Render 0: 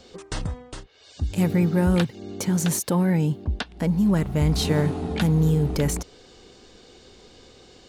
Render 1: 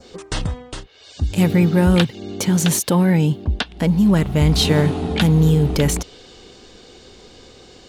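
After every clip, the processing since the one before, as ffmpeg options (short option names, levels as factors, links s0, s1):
-af "adynamicequalizer=threshold=0.00398:dfrequency=3200:dqfactor=1.6:tfrequency=3200:tqfactor=1.6:attack=5:release=100:ratio=0.375:range=3:mode=boostabove:tftype=bell,volume=1.88"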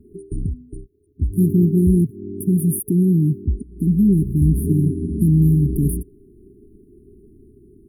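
-af "afftfilt=real='re*(1-between(b*sr/4096,430,9300))':imag='im*(1-between(b*sr/4096,430,9300))':win_size=4096:overlap=0.75"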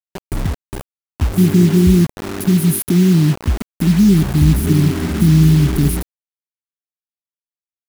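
-af "acrusher=bits=4:mix=0:aa=0.000001,volume=1.58"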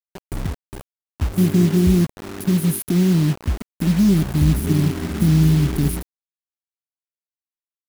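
-af "aeval=exprs='sgn(val(0))*max(abs(val(0))-0.0376,0)':c=same,volume=0.668"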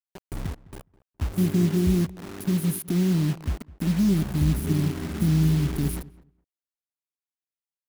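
-filter_complex "[0:a]asplit=2[s0][s1];[s1]adelay=208,lowpass=f=1700:p=1,volume=0.1,asplit=2[s2][s3];[s3]adelay=208,lowpass=f=1700:p=1,volume=0.16[s4];[s0][s2][s4]amix=inputs=3:normalize=0,volume=0.501"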